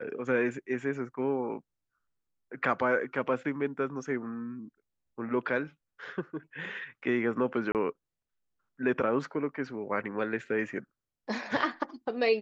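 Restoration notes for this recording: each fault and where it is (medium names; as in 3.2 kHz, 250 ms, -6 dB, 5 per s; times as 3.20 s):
7.72–7.75 s: dropout 28 ms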